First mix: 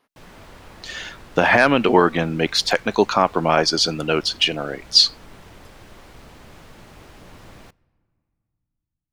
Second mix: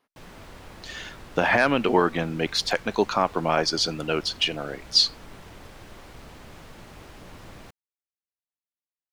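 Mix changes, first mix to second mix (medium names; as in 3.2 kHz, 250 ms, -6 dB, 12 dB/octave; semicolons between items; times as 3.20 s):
speech -5.5 dB; reverb: off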